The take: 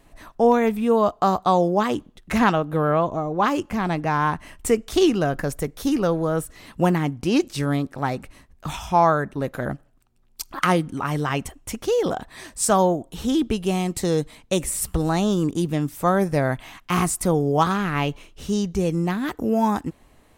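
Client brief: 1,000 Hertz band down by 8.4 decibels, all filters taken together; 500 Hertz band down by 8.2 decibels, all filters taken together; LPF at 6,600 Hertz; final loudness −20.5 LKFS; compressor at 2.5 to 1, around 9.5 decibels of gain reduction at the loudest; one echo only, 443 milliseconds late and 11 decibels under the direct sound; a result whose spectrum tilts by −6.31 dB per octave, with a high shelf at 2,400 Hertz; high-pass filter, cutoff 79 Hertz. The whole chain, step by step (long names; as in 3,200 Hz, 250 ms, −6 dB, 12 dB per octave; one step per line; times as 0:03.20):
high-pass filter 79 Hz
low-pass filter 6,600 Hz
parametric band 500 Hz −8.5 dB
parametric band 1,000 Hz −6.5 dB
high-shelf EQ 2,400 Hz −7.5 dB
downward compressor 2.5 to 1, threshold −33 dBFS
single-tap delay 443 ms −11 dB
level +14 dB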